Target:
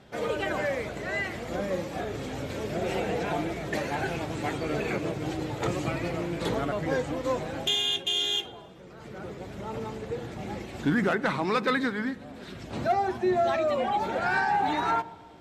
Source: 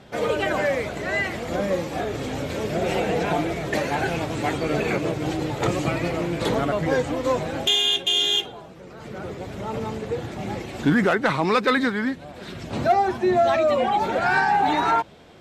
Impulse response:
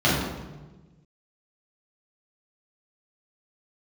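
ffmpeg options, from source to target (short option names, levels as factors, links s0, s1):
-filter_complex "[0:a]asplit=2[s0][s1];[1:a]atrim=start_sample=2205,asetrate=27783,aresample=44100[s2];[s1][s2]afir=irnorm=-1:irlink=0,volume=0.0119[s3];[s0][s3]amix=inputs=2:normalize=0,volume=0.501"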